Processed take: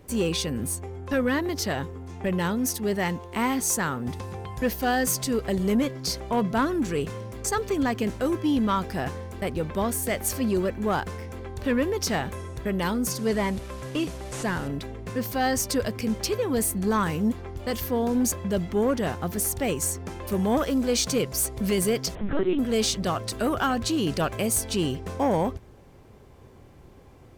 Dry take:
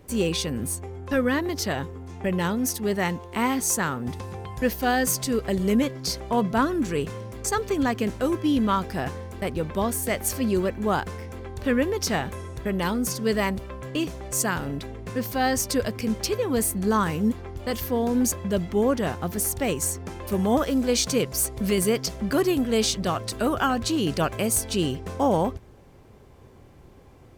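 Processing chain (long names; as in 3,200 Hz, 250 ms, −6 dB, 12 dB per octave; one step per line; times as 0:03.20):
0:13.18–0:14.68: linear delta modulator 64 kbit/s, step −40 dBFS
soft clipping −15 dBFS, distortion −20 dB
0:22.15–0:22.59: linear-prediction vocoder at 8 kHz pitch kept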